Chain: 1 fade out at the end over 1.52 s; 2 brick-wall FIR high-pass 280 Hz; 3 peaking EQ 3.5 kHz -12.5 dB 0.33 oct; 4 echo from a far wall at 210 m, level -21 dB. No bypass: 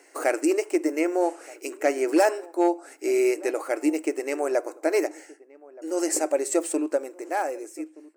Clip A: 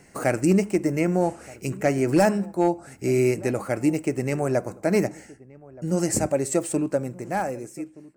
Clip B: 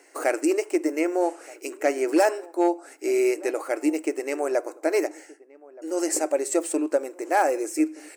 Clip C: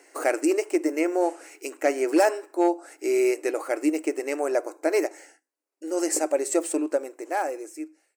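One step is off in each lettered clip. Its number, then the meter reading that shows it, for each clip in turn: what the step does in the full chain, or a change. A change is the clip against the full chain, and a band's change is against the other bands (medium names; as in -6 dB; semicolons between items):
2, 250 Hz band +3.0 dB; 1, momentary loudness spread change -3 LU; 4, echo-to-direct -25.0 dB to none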